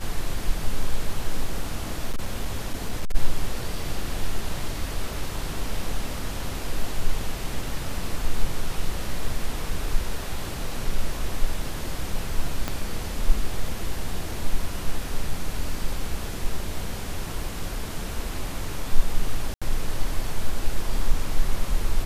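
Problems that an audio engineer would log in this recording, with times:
0:02.10–0:03.16: clipping −19.5 dBFS
0:12.68: click −11 dBFS
0:19.54–0:19.62: drop-out 76 ms

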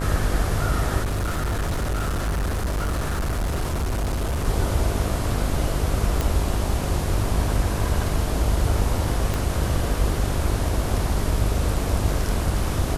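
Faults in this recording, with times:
mains buzz 50 Hz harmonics 25 −27 dBFS
0:01.01–0:04.47: clipping −21 dBFS
0:06.21: click
0:09.34: click

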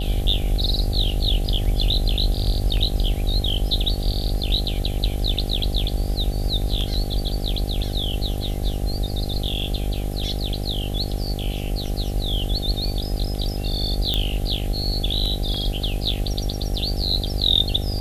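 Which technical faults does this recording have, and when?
mains buzz 50 Hz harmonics 16 −27 dBFS
0:14.14: click −9 dBFS

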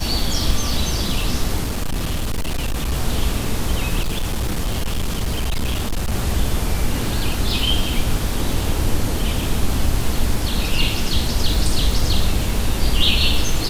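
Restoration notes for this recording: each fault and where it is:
surface crackle 130 per second −24 dBFS
0:01.63–0:02.93: clipping −18 dBFS
0:04.03–0:06.13: clipping −17 dBFS

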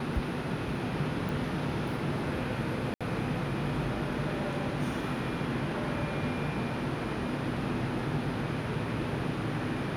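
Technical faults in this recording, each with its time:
0:01.29: click
0:02.94–0:03.01: drop-out 66 ms

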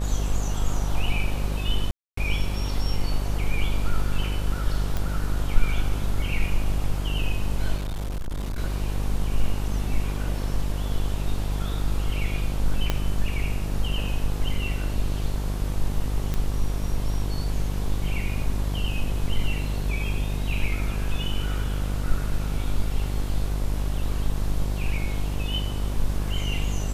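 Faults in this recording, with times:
mains buzz 50 Hz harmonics 23 −27 dBFS
0:01.91–0:02.17: drop-out 264 ms
0:04.97: click −14 dBFS
0:07.76–0:08.59: clipping −25.5 dBFS
0:12.90: click −9 dBFS
0:16.34: click −14 dBFS

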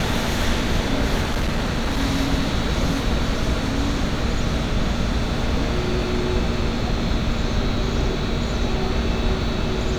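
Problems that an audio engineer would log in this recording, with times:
0:01.21–0:02.02: clipping −17.5 dBFS

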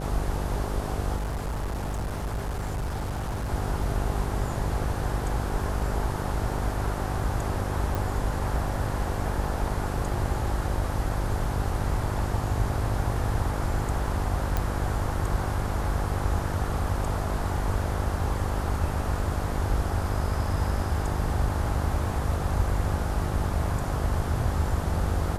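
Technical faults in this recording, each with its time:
mains buzz 50 Hz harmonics 15 −31 dBFS
0:01.16–0:03.52: clipping −26.5 dBFS
0:07.95: click
0:14.57: click

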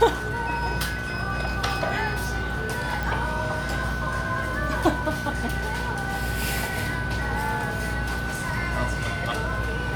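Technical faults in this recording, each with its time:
mains buzz 60 Hz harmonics 24 −32 dBFS
surface crackle 13 per second −32 dBFS
whistle 1,500 Hz −31 dBFS
0:03.03: click

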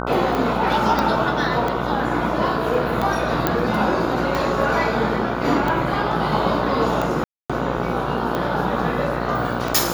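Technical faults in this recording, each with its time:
mains buzz 60 Hz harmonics 25 −26 dBFS
scratch tick 45 rpm
0:00.99: click −7 dBFS
0:03.47: click −3 dBFS
0:07.24–0:07.50: drop-out 256 ms

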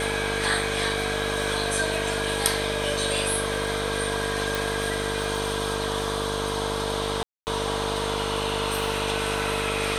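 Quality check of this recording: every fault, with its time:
mains buzz 50 Hz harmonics 14 −32 dBFS
whistle 450 Hz −32 dBFS
0:04.55: click
0:07.23–0:07.47: drop-out 239 ms

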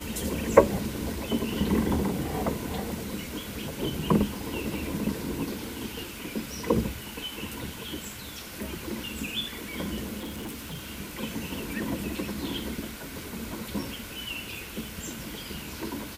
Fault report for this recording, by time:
0:10.19–0:10.89: clipping −33 dBFS

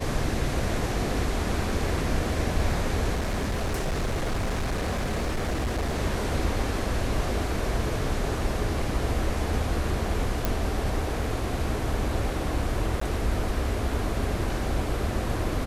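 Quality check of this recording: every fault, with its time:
0:03.14–0:05.99: clipping −23.5 dBFS
0:10.45: click
0:13.00–0:13.01: drop-out 14 ms

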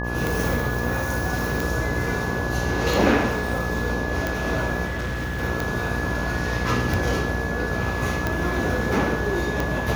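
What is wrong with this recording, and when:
mains buzz 60 Hz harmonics 20 −28 dBFS
scratch tick
whistle 1,700 Hz −30 dBFS
0:04.85–0:05.43: clipping −24 dBFS

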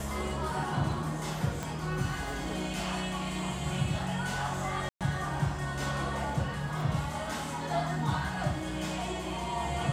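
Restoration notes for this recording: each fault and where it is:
0:01.63: click
0:04.89–0:05.01: drop-out 117 ms

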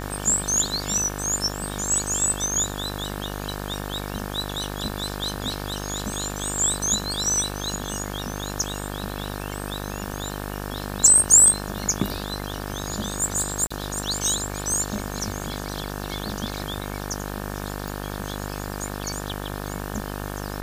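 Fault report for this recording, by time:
mains buzz 50 Hz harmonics 36 −32 dBFS
0:13.67–0:13.71: drop-out 35 ms
0:17.88: click

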